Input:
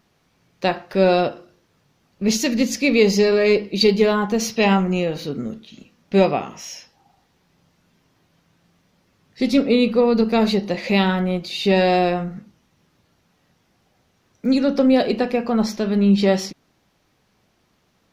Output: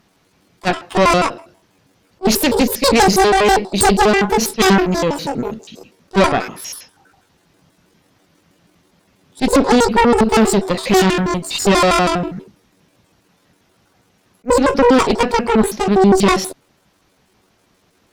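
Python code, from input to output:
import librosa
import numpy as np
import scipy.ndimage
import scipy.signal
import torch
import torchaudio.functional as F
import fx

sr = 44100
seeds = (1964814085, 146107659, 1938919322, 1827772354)

y = fx.pitch_trill(x, sr, semitones=11.0, every_ms=81)
y = fx.cheby_harmonics(y, sr, harmonics=(5, 6), levels_db=(-11, -9), full_scale_db=-3.0)
y = fx.attack_slew(y, sr, db_per_s=560.0)
y = y * librosa.db_to_amplitude(-1.5)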